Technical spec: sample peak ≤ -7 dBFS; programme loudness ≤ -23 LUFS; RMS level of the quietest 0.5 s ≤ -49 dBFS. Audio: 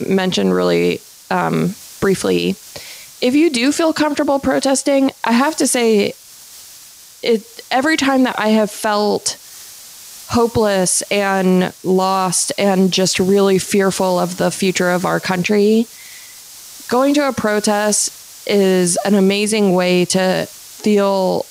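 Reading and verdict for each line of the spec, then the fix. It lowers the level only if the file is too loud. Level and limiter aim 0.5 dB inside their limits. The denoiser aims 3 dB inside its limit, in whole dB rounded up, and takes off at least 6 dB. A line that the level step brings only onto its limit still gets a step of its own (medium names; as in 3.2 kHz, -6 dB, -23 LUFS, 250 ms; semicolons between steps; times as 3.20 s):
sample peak -4.5 dBFS: fail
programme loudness -15.5 LUFS: fail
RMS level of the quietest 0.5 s -40 dBFS: fail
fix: noise reduction 6 dB, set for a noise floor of -40 dBFS; trim -8 dB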